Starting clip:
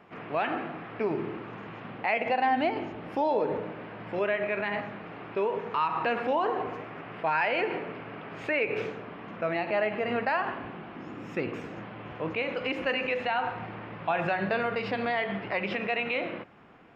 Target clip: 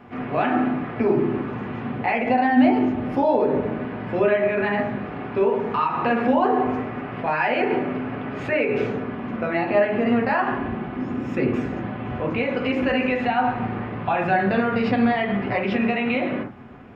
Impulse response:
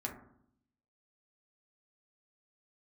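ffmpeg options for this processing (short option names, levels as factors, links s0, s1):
-filter_complex "[0:a]lowshelf=f=210:g=10,asplit=2[s0][s1];[s1]alimiter=limit=0.075:level=0:latency=1:release=97,volume=1.19[s2];[s0][s2]amix=inputs=2:normalize=0[s3];[1:a]atrim=start_sample=2205,atrim=end_sample=3969[s4];[s3][s4]afir=irnorm=-1:irlink=0"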